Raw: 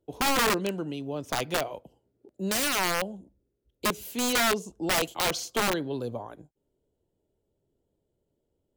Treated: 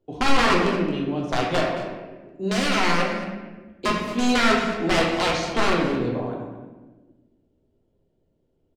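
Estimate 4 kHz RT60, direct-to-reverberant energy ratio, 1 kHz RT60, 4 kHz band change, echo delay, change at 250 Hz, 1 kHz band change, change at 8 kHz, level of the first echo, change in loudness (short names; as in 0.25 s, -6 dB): 0.85 s, -2.5 dB, 1.1 s, +3.5 dB, 0.221 s, +9.0 dB, +6.5 dB, -4.5 dB, -12.5 dB, +5.0 dB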